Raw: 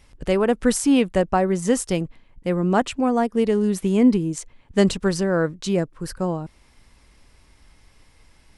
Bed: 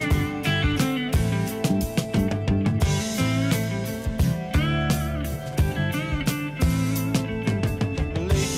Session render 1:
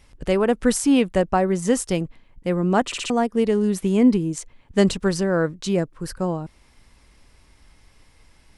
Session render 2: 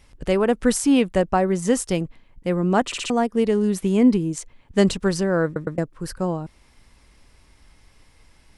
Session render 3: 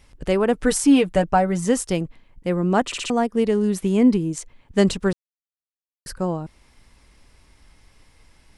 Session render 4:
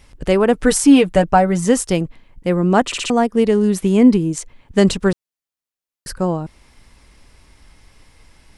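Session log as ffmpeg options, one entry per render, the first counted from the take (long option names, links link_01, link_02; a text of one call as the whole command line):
ffmpeg -i in.wav -filter_complex "[0:a]asplit=5[link_01][link_02][link_03][link_04][link_05];[link_01]atrim=end=2.922[link_06];[link_02]atrim=start=2.858:end=2.922[link_07];[link_03]atrim=start=2.858:end=2.922[link_08];[link_04]atrim=start=2.858:end=2.922[link_09];[link_05]atrim=start=3.098[link_10];[link_06][link_07]acrossfade=duration=0.004:curve1=hsin:curve2=hsin[link_11];[link_11][link_08]acrossfade=duration=0.004:curve1=hsin:curve2=hsin[link_12];[link_12][link_09]acrossfade=duration=0.004:curve1=hsin:curve2=hsin[link_13];[link_13][link_10]acrossfade=duration=0.004:curve1=hsin:curve2=hsin" out.wav
ffmpeg -i in.wav -filter_complex "[0:a]asplit=4[link_01][link_02][link_03][link_04];[link_01]atrim=end=5.562[link_05];[link_02]atrim=start=5.448:end=5.562[link_06];[link_03]atrim=start=5.448:end=5.562[link_07];[link_04]atrim=start=5.778[link_08];[link_05][link_06]acrossfade=duration=0.004:curve1=hsin:curve2=hsin[link_09];[link_09][link_07]acrossfade=duration=0.004:curve1=hsin:curve2=hsin[link_10];[link_10][link_08]acrossfade=duration=0.004:curve1=hsin:curve2=hsin" out.wav
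ffmpeg -i in.wav -filter_complex "[0:a]asettb=1/sr,asplit=3[link_01][link_02][link_03];[link_01]atrim=end=0.534[link_04];[link_02]atrim=start=0.53:end=1.65,asetpts=PTS-STARTPTS,afade=type=in:duration=0.004:curve=qsin,afade=type=out:start_time=1.116:duration=0.004:curve=qsin,aecho=1:1:6.7:0.58,atrim=end_sample=49392[link_05];[link_03]atrim=start=1.646[link_06];[link_04][link_05]acrossfade=duration=0.004:curve1=hsin:curve2=qsin[link_07];[link_07][link_06]acrossfade=duration=0.004:curve1=qsin:curve2=hsin,asplit=3[link_08][link_09][link_10];[link_08]atrim=end=5.13,asetpts=PTS-STARTPTS,afade=type=out:start_time=5.126:duration=0.004:curve=hsin[link_11];[link_09]atrim=start=5.13:end=6.06,asetpts=PTS-STARTPTS,volume=0[link_12];[link_10]atrim=start=6.06,asetpts=PTS-STARTPTS,afade=type=in:duration=0.004:curve=hsin[link_13];[link_11][link_12][link_13]concat=n=3:v=0:a=1" out.wav
ffmpeg -i in.wav -af "volume=5dB,alimiter=limit=-1dB:level=0:latency=1" out.wav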